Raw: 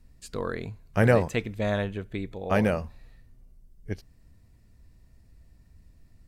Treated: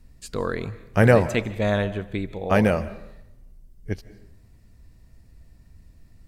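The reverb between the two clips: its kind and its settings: algorithmic reverb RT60 0.81 s, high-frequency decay 0.65×, pre-delay 110 ms, DRR 16.5 dB; trim +4.5 dB

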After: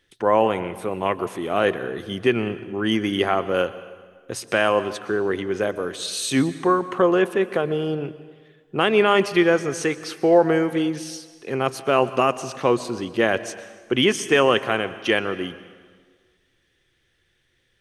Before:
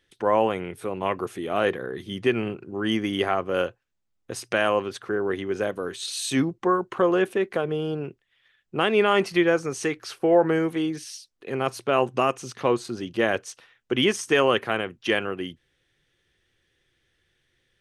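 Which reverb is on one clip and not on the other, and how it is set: plate-style reverb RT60 1.6 s, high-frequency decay 0.85×, pre-delay 105 ms, DRR 14.5 dB; trim +3 dB

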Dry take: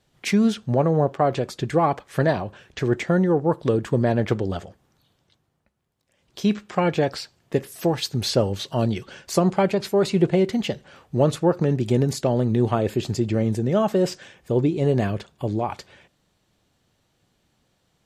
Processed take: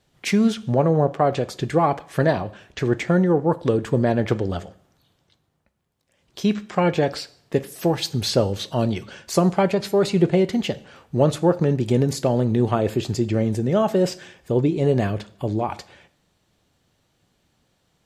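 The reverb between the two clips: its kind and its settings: plate-style reverb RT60 0.65 s, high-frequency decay 0.95×, DRR 15.5 dB; trim +1 dB

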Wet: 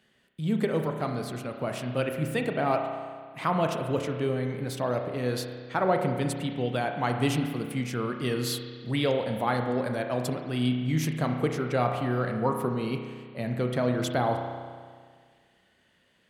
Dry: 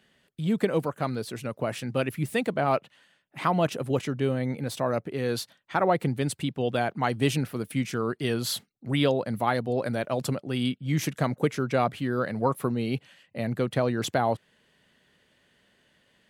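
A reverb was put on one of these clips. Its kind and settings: spring tank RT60 1.8 s, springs 32 ms, chirp 40 ms, DRR 4 dB; trim -2.5 dB

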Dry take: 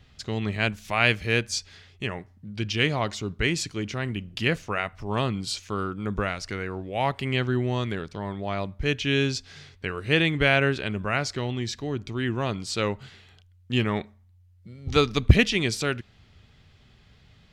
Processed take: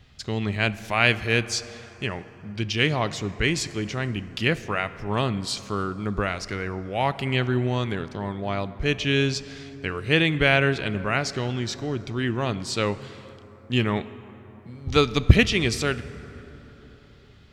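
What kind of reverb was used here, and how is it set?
plate-style reverb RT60 4.3 s, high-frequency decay 0.4×, DRR 14.5 dB; trim +1.5 dB

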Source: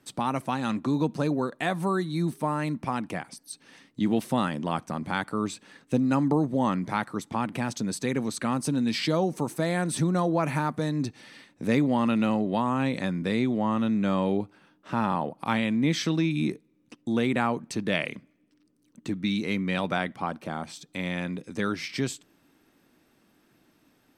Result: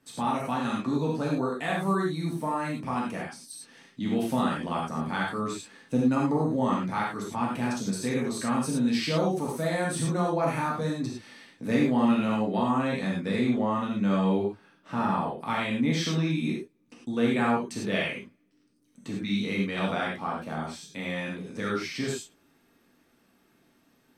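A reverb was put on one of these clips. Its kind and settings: gated-style reverb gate 130 ms flat, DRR -4.5 dB; trim -6 dB

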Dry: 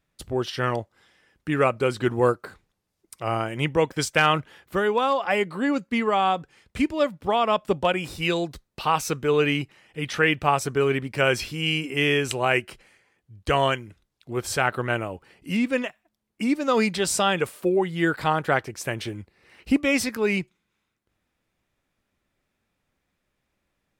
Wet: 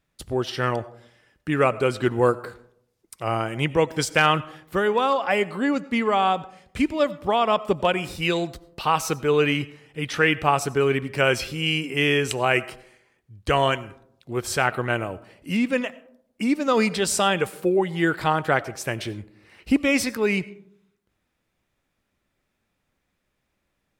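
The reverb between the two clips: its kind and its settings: algorithmic reverb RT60 0.72 s, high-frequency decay 0.35×, pre-delay 50 ms, DRR 18.5 dB; trim +1 dB

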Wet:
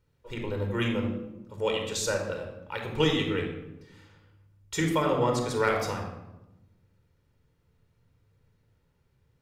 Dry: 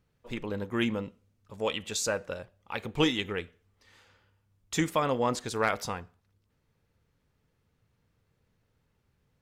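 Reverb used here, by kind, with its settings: simulated room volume 3900 m³, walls furnished, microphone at 4.6 m; trim -2.5 dB

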